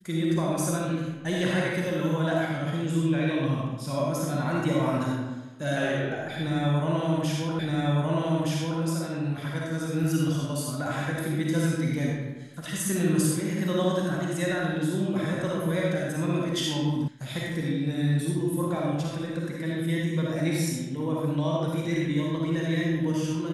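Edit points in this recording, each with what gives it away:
0:07.59: the same again, the last 1.22 s
0:17.08: cut off before it has died away

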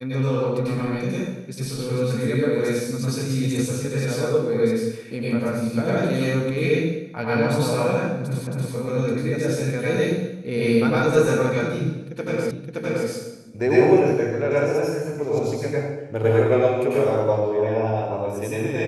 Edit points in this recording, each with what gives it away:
0:08.47: the same again, the last 0.27 s
0:12.51: the same again, the last 0.57 s

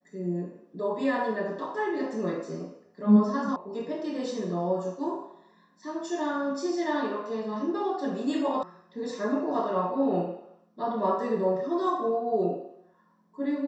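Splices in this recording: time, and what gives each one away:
0:03.56: cut off before it has died away
0:08.63: cut off before it has died away

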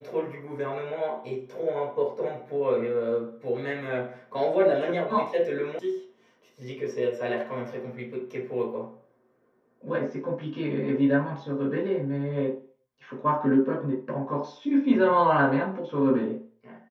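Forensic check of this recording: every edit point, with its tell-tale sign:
0:05.79: cut off before it has died away

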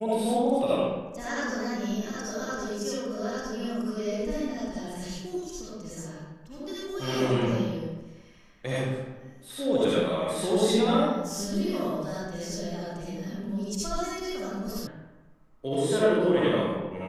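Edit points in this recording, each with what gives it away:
0:14.87: cut off before it has died away

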